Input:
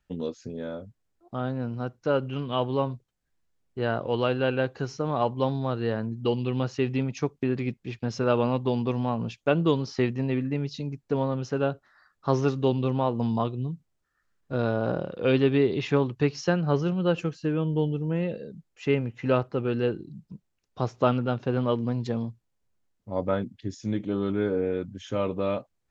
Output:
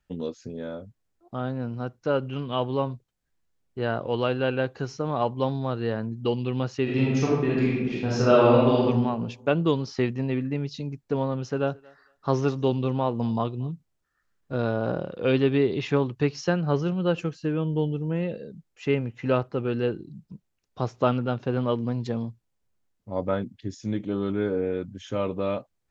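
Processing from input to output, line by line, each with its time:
0:06.83–0:08.84: thrown reverb, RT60 1.1 s, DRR −6 dB
0:11.36–0:13.72: feedback echo with a high-pass in the loop 229 ms, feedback 20%, high-pass 390 Hz, level −24 dB

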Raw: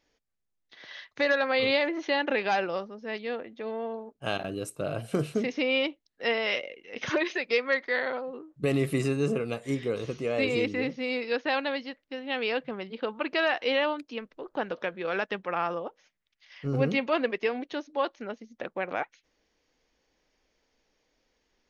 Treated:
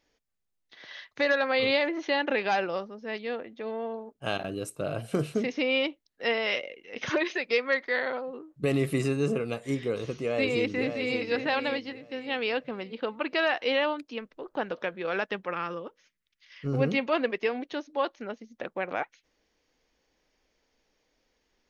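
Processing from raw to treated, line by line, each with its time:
0:10.12–0:11.21: delay throw 570 ms, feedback 35%, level −7 dB
0:15.53–0:16.66: parametric band 740 Hz −15 dB 0.54 octaves

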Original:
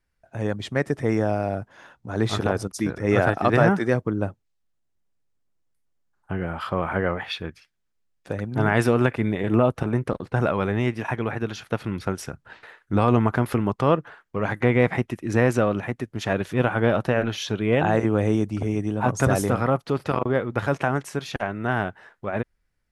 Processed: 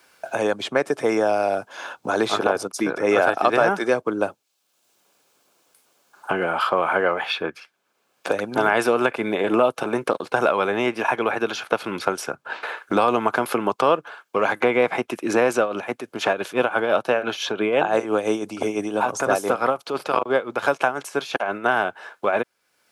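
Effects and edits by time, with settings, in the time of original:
0:15.60–0:21.66: amplitude tremolo 5.9 Hz, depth 67%
whole clip: high-pass filter 450 Hz 12 dB per octave; notch filter 1,900 Hz, Q 5.3; multiband upward and downward compressor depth 70%; level +6.5 dB

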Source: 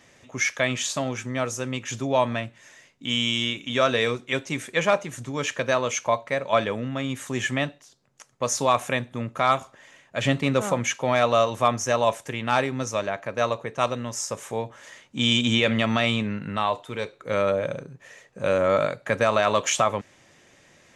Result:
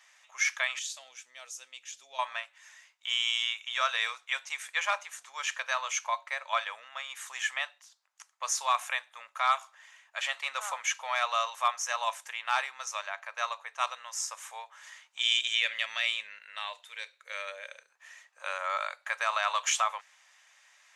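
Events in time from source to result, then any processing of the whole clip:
0:00.79–0:02.19: drawn EQ curve 360 Hz 0 dB, 1,100 Hz −20 dB, 3,600 Hz −5 dB
0:15.20–0:17.90: flat-topped bell 980 Hz −10.5 dB 1.2 octaves
whole clip: inverse Chebyshev high-pass filter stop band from 340 Hz, stop band 50 dB; level −3.5 dB

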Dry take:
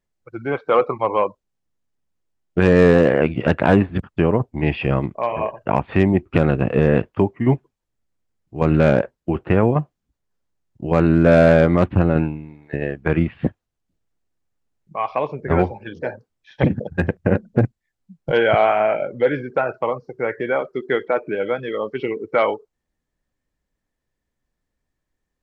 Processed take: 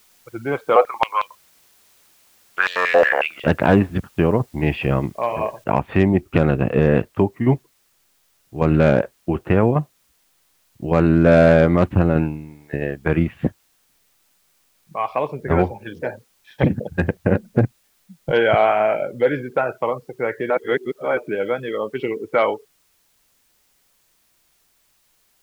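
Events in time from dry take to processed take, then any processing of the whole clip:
0:00.76–0:03.44: high-pass on a step sequencer 11 Hz 650–3,500 Hz
0:05.64: noise floor change −56 dB −63 dB
0:20.50–0:21.17: reverse

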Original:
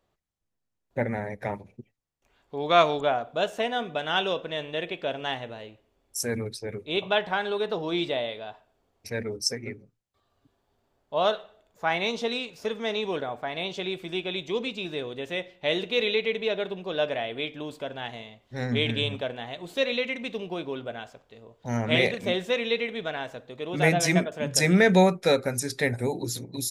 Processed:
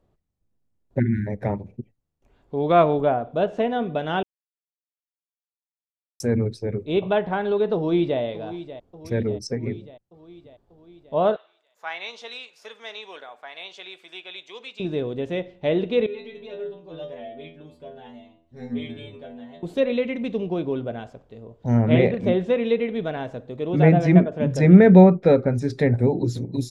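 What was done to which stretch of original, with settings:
0:00.99–0:01.27: time-frequency box erased 400–1,400 Hz
0:04.23–0:06.20: silence
0:07.75–0:08.20: delay throw 590 ms, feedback 65%, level −14 dB
0:11.36–0:14.80: high-pass filter 1,400 Hz
0:16.06–0:19.63: stiff-string resonator 80 Hz, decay 0.58 s, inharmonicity 0.002
whole clip: treble cut that deepens with the level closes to 2,600 Hz, closed at −21.5 dBFS; tilt shelving filter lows +8.5 dB, about 720 Hz; level +3 dB

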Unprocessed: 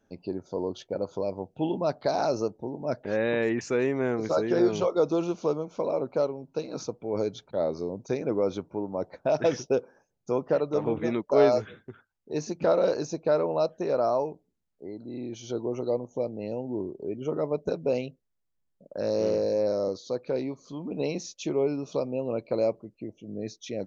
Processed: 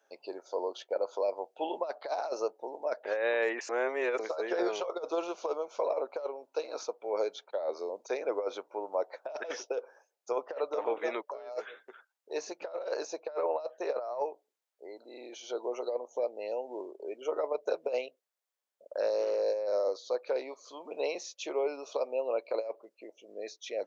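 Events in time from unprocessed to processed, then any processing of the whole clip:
0:03.69–0:04.19: reverse
whole clip: high-pass filter 500 Hz 24 dB per octave; dynamic equaliser 6,200 Hz, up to −6 dB, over −54 dBFS, Q 0.73; compressor whose output falls as the input rises −30 dBFS, ratio −0.5

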